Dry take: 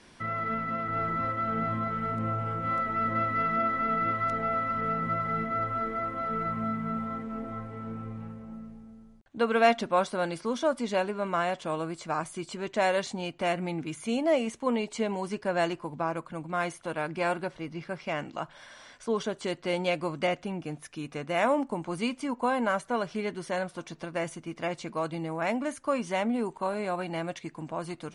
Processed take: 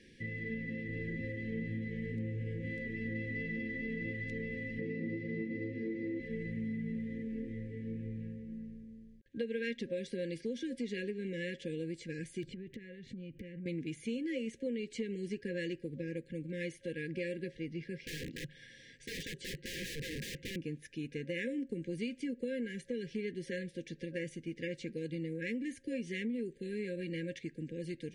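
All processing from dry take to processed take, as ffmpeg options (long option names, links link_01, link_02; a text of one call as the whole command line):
ffmpeg -i in.wav -filter_complex "[0:a]asettb=1/sr,asplit=3[link_01][link_02][link_03];[link_01]atrim=end=4.794[link_04];[link_02]atrim=start=4.79:end=6.2,asetpts=PTS-STARTPTS,afade=type=in:duration=0.004:curve=qsin,afade=type=out:start_time=1.406:duration=0.004:curve=qsin,highpass=110,equalizer=frequency=170:width_type=q:width=4:gain=4,equalizer=frequency=330:width_type=q:width=4:gain=9,equalizer=frequency=580:width_type=q:width=4:gain=8,equalizer=frequency=1600:width_type=q:width=4:gain=-8,equalizer=frequency=3200:width_type=q:width=4:gain=-6,lowpass=frequency=5800:width=0.5412,lowpass=frequency=5800:width=1.3066,asplit=2[link_05][link_06];[link_06]adelay=39,volume=-5dB[link_07];[link_05][link_07]amix=inputs=2:normalize=0,atrim=end_sample=62181[link_08];[link_03]atrim=start=6.196[link_09];[link_04][link_08]acrossfade=duration=0.004:curve1=hsin:curve2=qsin[link_10];[link_10][link_09]acrossfade=duration=0.004:curve1=qsin:curve2=hsin,asettb=1/sr,asplit=3[link_11][link_12][link_13];[link_11]atrim=end=12.434[link_14];[link_12]atrim=start=12.43:end=13.66,asetpts=PTS-STARTPTS,afade=type=in:duration=0.004:curve=qsin,afade=type=out:start_time=1.226:duration=0.004:curve=qsin,bass=frequency=250:gain=13,treble=frequency=4000:gain=-14,acompressor=threshold=-39dB:ratio=12:attack=3.2:release=140:knee=1:detection=peak,aeval=exprs='(mod(42.2*val(0)+1,2)-1)/42.2':channel_layout=same[link_15];[link_13]atrim=start=13.656[link_16];[link_14][link_15]acrossfade=duration=0.004:curve1=hsin:curve2=qsin[link_17];[link_17][link_16]acrossfade=duration=0.004:curve1=qsin:curve2=hsin,asettb=1/sr,asplit=3[link_18][link_19][link_20];[link_18]atrim=end=18.064[link_21];[link_19]atrim=start=18.06:end=20.56,asetpts=PTS-STARTPTS,afade=type=in:duration=0.004:curve=qsin,afade=type=out:start_time=2.496:duration=0.004:curve=qsin,equalizer=frequency=140:width_type=o:width=0.73:gain=9.5,aeval=exprs='(mod(35.5*val(0)+1,2)-1)/35.5':channel_layout=same[link_22];[link_20]atrim=start=20.556[link_23];[link_21][link_22]acrossfade=duration=0.004:curve1=hsin:curve2=qsin[link_24];[link_24][link_23]acrossfade=duration=0.004:curve1=qsin:curve2=hsin,afftfilt=real='re*(1-between(b*sr/4096,540,1600))':imag='im*(1-between(b*sr/4096,540,1600))':win_size=4096:overlap=0.75,highshelf=frequency=5200:gain=-11.5,acompressor=threshold=-32dB:ratio=5,volume=-2dB" out.wav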